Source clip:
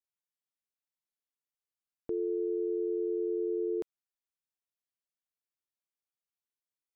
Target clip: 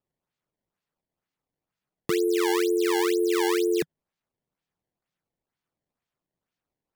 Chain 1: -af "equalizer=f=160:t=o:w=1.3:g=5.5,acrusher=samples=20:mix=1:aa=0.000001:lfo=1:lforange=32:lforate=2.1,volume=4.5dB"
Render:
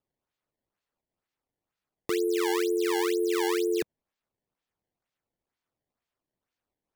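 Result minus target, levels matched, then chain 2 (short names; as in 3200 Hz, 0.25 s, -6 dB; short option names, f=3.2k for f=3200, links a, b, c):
125 Hz band -7.0 dB
-af "equalizer=f=160:t=o:w=1.3:g=17.5,acrusher=samples=20:mix=1:aa=0.000001:lfo=1:lforange=32:lforate=2.1,volume=4.5dB"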